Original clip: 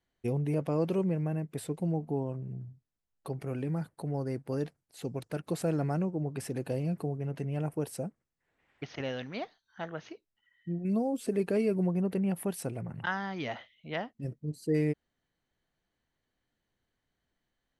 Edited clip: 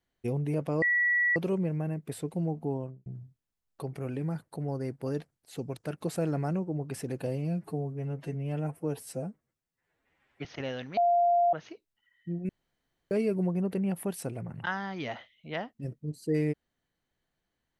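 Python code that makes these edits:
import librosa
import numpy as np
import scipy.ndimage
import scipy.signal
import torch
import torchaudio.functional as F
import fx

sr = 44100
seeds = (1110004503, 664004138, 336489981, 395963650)

y = fx.studio_fade_out(x, sr, start_s=2.23, length_s=0.29)
y = fx.edit(y, sr, fx.insert_tone(at_s=0.82, length_s=0.54, hz=1940.0, db=-22.5),
    fx.stretch_span(start_s=6.73, length_s=2.12, factor=1.5),
    fx.bleep(start_s=9.37, length_s=0.56, hz=696.0, db=-20.5),
    fx.room_tone_fill(start_s=10.89, length_s=0.62), tone=tone)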